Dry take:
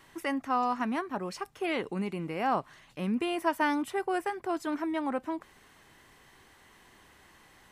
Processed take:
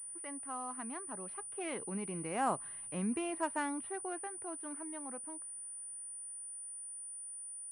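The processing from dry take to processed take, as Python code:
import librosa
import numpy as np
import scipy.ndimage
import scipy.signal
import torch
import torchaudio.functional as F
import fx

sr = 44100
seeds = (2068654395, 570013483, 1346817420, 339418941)

y = scipy.ndimage.median_filter(x, 9, mode='constant')
y = fx.doppler_pass(y, sr, speed_mps=8, closest_m=5.3, pass_at_s=2.67)
y = fx.pwm(y, sr, carrier_hz=9400.0)
y = F.gain(torch.from_numpy(y), -4.0).numpy()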